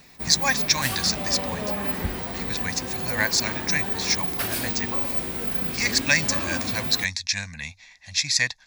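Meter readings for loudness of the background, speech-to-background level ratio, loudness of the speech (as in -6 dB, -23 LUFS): -26.5 LUFS, 2.0 dB, -24.5 LUFS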